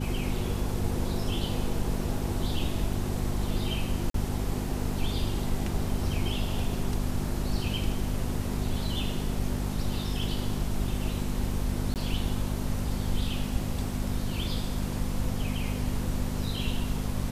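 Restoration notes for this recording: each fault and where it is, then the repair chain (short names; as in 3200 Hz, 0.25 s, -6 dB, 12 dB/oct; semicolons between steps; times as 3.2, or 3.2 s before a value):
hum 50 Hz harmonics 5 -33 dBFS
4.1–4.14 gap 43 ms
11.94–11.96 gap 18 ms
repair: de-hum 50 Hz, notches 5; interpolate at 4.1, 43 ms; interpolate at 11.94, 18 ms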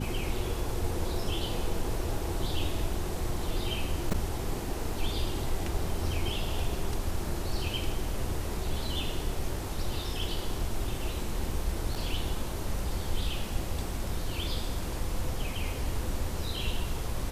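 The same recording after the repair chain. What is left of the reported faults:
none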